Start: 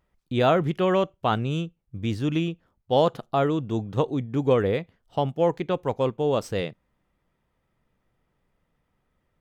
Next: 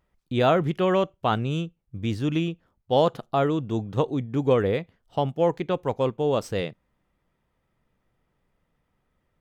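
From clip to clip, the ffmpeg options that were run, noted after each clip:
ffmpeg -i in.wav -af anull out.wav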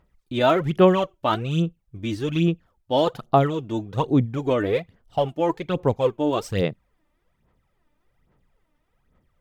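ffmpeg -i in.wav -af "aphaser=in_gain=1:out_gain=1:delay=3.4:decay=0.65:speed=1.2:type=sinusoidal" out.wav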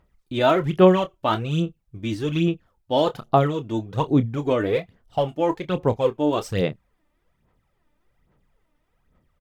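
ffmpeg -i in.wav -filter_complex "[0:a]asplit=2[link_01][link_02];[link_02]adelay=27,volume=-12dB[link_03];[link_01][link_03]amix=inputs=2:normalize=0" out.wav

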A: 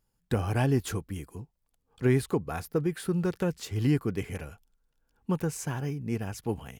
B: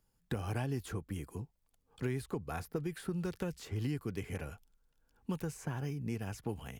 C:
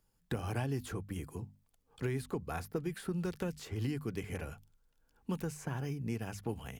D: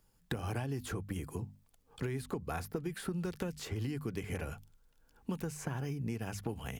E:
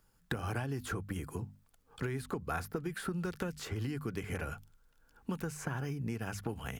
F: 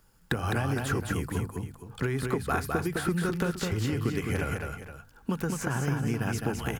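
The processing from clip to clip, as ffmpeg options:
ffmpeg -i in.wav -filter_complex "[0:a]acrossover=split=87|2300[link_01][link_02][link_03];[link_01]acompressor=threshold=-48dB:ratio=4[link_04];[link_02]acompressor=threshold=-36dB:ratio=4[link_05];[link_03]acompressor=threshold=-52dB:ratio=4[link_06];[link_04][link_05][link_06]amix=inputs=3:normalize=0" out.wav
ffmpeg -i in.wav -af "bandreject=frequency=50:width_type=h:width=6,bandreject=frequency=100:width_type=h:width=6,bandreject=frequency=150:width_type=h:width=6,bandreject=frequency=200:width_type=h:width=6,bandreject=frequency=250:width_type=h:width=6,volume=1dB" out.wav
ffmpeg -i in.wav -af "acompressor=threshold=-39dB:ratio=4,volume=5dB" out.wav
ffmpeg -i in.wav -af "equalizer=frequency=1400:width=2.2:gain=6.5" out.wav
ffmpeg -i in.wav -af "aecho=1:1:209|470:0.631|0.237,volume=7dB" out.wav

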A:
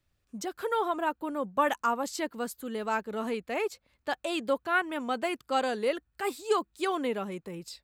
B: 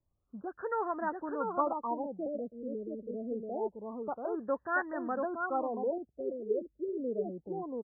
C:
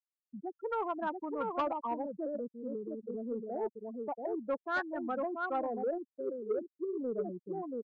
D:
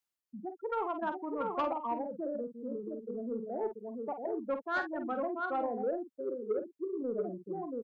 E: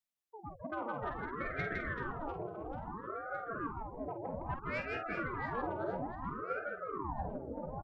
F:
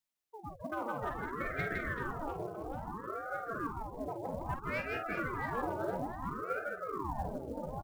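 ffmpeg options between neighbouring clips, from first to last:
ffmpeg -i in.wav -af "aecho=1:1:683:0.668,afftfilt=real='re*lt(b*sr/1024,610*pow(2000/610,0.5+0.5*sin(2*PI*0.26*pts/sr)))':imag='im*lt(b*sr/1024,610*pow(2000/610,0.5+0.5*sin(2*PI*0.26*pts/sr)))':win_size=1024:overlap=0.75,volume=-4.5dB" out.wav
ffmpeg -i in.wav -af "afftfilt=real='re*gte(hypot(re,im),0.0355)':imag='im*gte(hypot(re,im),0.0355)':win_size=1024:overlap=0.75,asoftclip=type=tanh:threshold=-24.5dB" out.wav
ffmpeg -i in.wav -filter_complex "[0:a]areverse,acompressor=mode=upward:threshold=-48dB:ratio=2.5,areverse,asplit=2[link_01][link_02];[link_02]adelay=48,volume=-8.5dB[link_03];[link_01][link_03]amix=inputs=2:normalize=0" out.wav
ffmpeg -i in.wav -filter_complex "[0:a]asplit=2[link_01][link_02];[link_02]aecho=0:1:160|384|697.6|1137|1751:0.631|0.398|0.251|0.158|0.1[link_03];[link_01][link_03]amix=inputs=2:normalize=0,aeval=exprs='val(0)*sin(2*PI*560*n/s+560*0.8/0.6*sin(2*PI*0.6*n/s))':channel_layout=same,volume=-3dB" out.wav
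ffmpeg -i in.wav -af "acrusher=bits=7:mode=log:mix=0:aa=0.000001,volume=1.5dB" out.wav

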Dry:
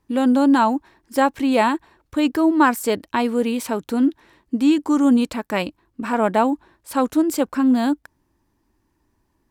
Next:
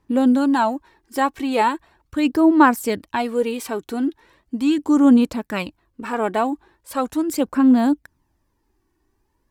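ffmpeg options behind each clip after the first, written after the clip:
ffmpeg -i in.wav -af "aphaser=in_gain=1:out_gain=1:delay=2.7:decay=0.46:speed=0.39:type=sinusoidal,volume=-2.5dB" out.wav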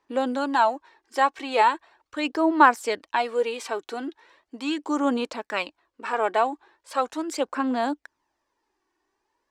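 ffmpeg -i in.wav -filter_complex "[0:a]acrossover=split=390 7900:gain=0.0631 1 0.0794[link_01][link_02][link_03];[link_01][link_02][link_03]amix=inputs=3:normalize=0" out.wav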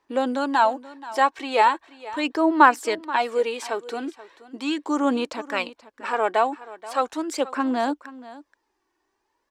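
ffmpeg -i in.wav -af "aecho=1:1:480:0.133,volume=1.5dB" out.wav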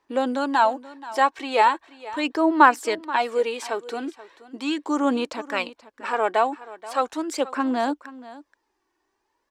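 ffmpeg -i in.wav -af anull out.wav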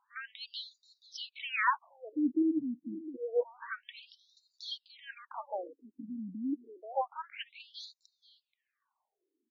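ffmpeg -i in.wav -af "asubboost=boost=8:cutoff=180,afftfilt=real='re*between(b*sr/1024,210*pow(5200/210,0.5+0.5*sin(2*PI*0.28*pts/sr))/1.41,210*pow(5200/210,0.5+0.5*sin(2*PI*0.28*pts/sr))*1.41)':imag='im*between(b*sr/1024,210*pow(5200/210,0.5+0.5*sin(2*PI*0.28*pts/sr))/1.41,210*pow(5200/210,0.5+0.5*sin(2*PI*0.28*pts/sr))*1.41)':win_size=1024:overlap=0.75,volume=-2.5dB" out.wav

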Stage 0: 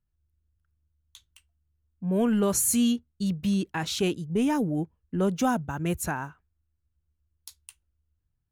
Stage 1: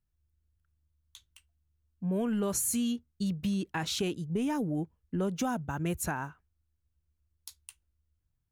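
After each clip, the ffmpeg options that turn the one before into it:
ffmpeg -i in.wav -af "acompressor=threshold=-26dB:ratio=6,volume=-1.5dB" out.wav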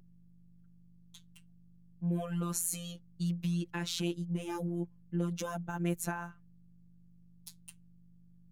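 ffmpeg -i in.wav -af "aeval=exprs='val(0)+0.00251*(sin(2*PI*50*n/s)+sin(2*PI*2*50*n/s)/2+sin(2*PI*3*50*n/s)/3+sin(2*PI*4*50*n/s)/4+sin(2*PI*5*50*n/s)/5)':channel_layout=same,afftfilt=real='hypot(re,im)*cos(PI*b)':imag='0':win_size=1024:overlap=0.75" out.wav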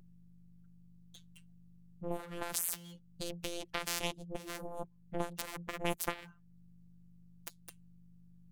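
ffmpeg -i in.wav -af "aeval=exprs='0.211*(cos(1*acos(clip(val(0)/0.211,-1,1)))-cos(1*PI/2))+0.0188*(cos(2*acos(clip(val(0)/0.211,-1,1)))-cos(2*PI/2))+0.0266*(cos(5*acos(clip(val(0)/0.211,-1,1)))-cos(5*PI/2))+0.0075*(cos(6*acos(clip(val(0)/0.211,-1,1)))-cos(6*PI/2))+0.0596*(cos(7*acos(clip(val(0)/0.211,-1,1)))-cos(7*PI/2))':channel_layout=same,acompressor=threshold=-57dB:ratio=1.5,volume=10dB" out.wav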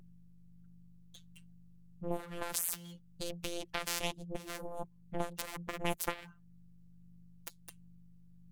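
ffmpeg -i in.wav -af "aphaser=in_gain=1:out_gain=1:delay=2.3:decay=0.22:speed=1.4:type=triangular" out.wav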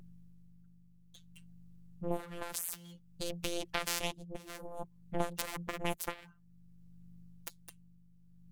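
ffmpeg -i in.wav -af "tremolo=f=0.56:d=0.55,volume=3dB" out.wav

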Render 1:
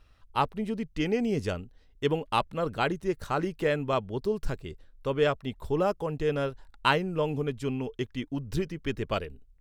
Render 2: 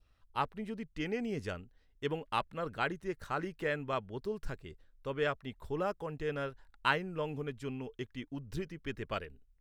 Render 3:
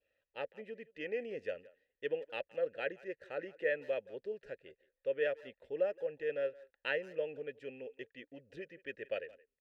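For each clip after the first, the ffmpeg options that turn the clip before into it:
ffmpeg -i in.wav -af "adynamicequalizer=threshold=0.00562:dfrequency=1700:dqfactor=1.3:tfrequency=1700:tqfactor=1.3:attack=5:release=100:ratio=0.375:range=3.5:mode=boostabove:tftype=bell,volume=-9dB" out.wav
ffmpeg -i in.wav -filter_complex "[0:a]asplit=3[link_01][link_02][link_03];[link_01]bandpass=frequency=530:width_type=q:width=8,volume=0dB[link_04];[link_02]bandpass=frequency=1840:width_type=q:width=8,volume=-6dB[link_05];[link_03]bandpass=frequency=2480:width_type=q:width=8,volume=-9dB[link_06];[link_04][link_05][link_06]amix=inputs=3:normalize=0,asplit=2[link_07][link_08];[link_08]adelay=170,highpass=300,lowpass=3400,asoftclip=type=hard:threshold=-39dB,volume=-20dB[link_09];[link_07][link_09]amix=inputs=2:normalize=0,volume=8dB" out.wav

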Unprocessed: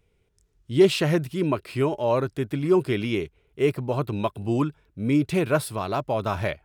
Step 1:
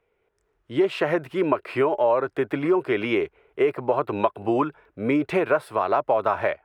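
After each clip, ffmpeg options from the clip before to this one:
ffmpeg -i in.wav -filter_complex "[0:a]dynaudnorm=framelen=160:gausssize=5:maxgain=9dB,acrossover=split=390 2200:gain=0.1 1 0.0891[link_01][link_02][link_03];[link_01][link_02][link_03]amix=inputs=3:normalize=0,acompressor=threshold=-24dB:ratio=4,volume=5.5dB" out.wav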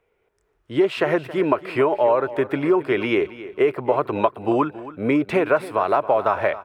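ffmpeg -i in.wav -af "aecho=1:1:273|546|819:0.158|0.0523|0.0173,volume=2.5dB" out.wav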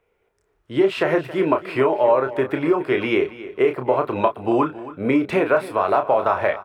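ffmpeg -i in.wav -filter_complex "[0:a]asplit=2[link_01][link_02];[link_02]adelay=31,volume=-7dB[link_03];[link_01][link_03]amix=inputs=2:normalize=0" out.wav

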